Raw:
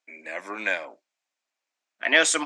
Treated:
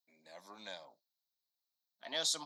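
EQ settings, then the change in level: EQ curve 140 Hz 0 dB, 330 Hz -20 dB, 900 Hz -10 dB, 1500 Hz -22 dB, 2600 Hz -26 dB, 4000 Hz +4 dB, 8600 Hz -14 dB, 13000 Hz +11 dB; -3.5 dB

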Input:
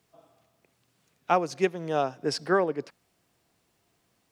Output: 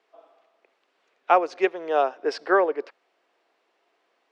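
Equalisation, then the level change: HPF 380 Hz 24 dB/oct; LPF 2900 Hz 12 dB/oct; +5.5 dB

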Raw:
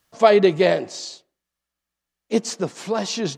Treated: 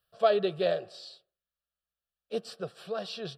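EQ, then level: fixed phaser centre 1400 Hz, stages 8; -8.5 dB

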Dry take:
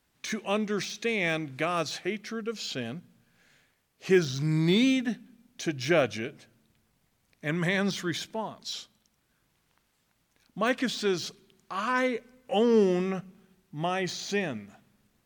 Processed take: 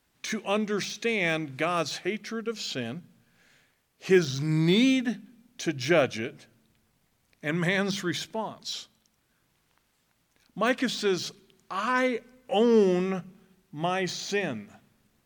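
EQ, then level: notches 50/100/150/200 Hz; +1.5 dB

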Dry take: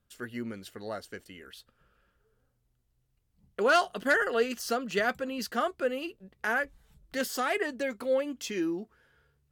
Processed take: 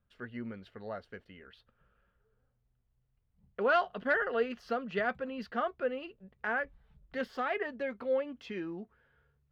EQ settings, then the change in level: air absorption 360 m; bell 320 Hz -8 dB 0.41 oct; -1.5 dB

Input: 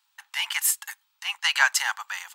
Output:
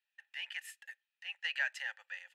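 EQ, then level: vowel filter e; bell 11000 Hz +5 dB 0.38 oct; -1.5 dB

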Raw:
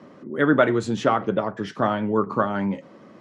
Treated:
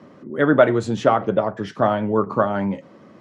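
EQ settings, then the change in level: bell 91 Hz +4.5 dB 1.4 oct; dynamic EQ 640 Hz, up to +6 dB, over -35 dBFS, Q 1.6; 0.0 dB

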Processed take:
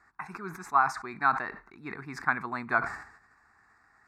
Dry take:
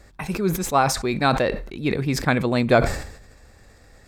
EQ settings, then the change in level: band-pass 1200 Hz, Q 1.2; fixed phaser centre 1300 Hz, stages 4; 0.0 dB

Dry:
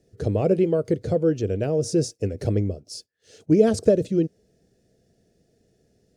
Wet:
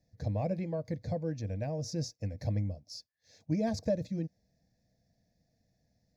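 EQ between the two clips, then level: fixed phaser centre 2000 Hz, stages 8; -6.5 dB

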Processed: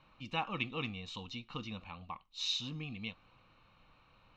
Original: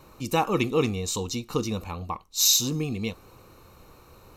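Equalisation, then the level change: ladder low-pass 3600 Hz, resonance 50%; bell 76 Hz -10 dB 0.59 oct; bell 400 Hz -15 dB 0.58 oct; -2.0 dB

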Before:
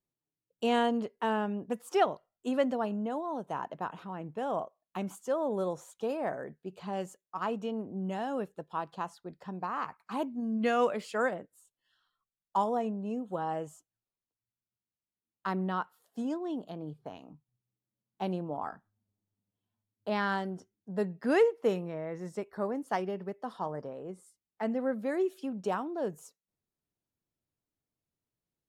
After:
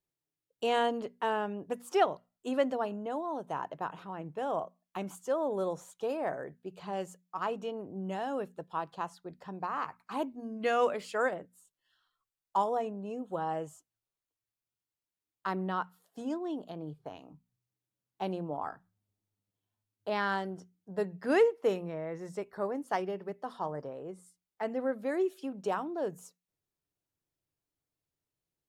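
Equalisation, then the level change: bell 220 Hz -9.5 dB 0.23 oct; notches 60/120/180/240 Hz; 0.0 dB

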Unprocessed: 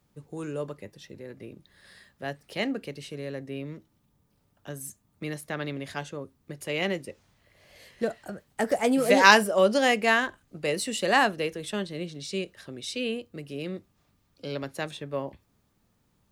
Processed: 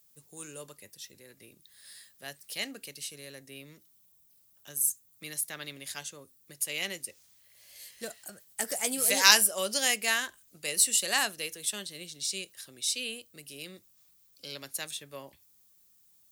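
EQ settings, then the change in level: pre-emphasis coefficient 0.9; high shelf 4200 Hz +7.5 dB; +5.0 dB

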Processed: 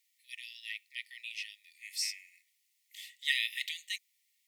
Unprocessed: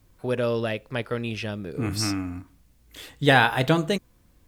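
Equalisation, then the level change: brick-wall FIR high-pass 1800 Hz; -5.0 dB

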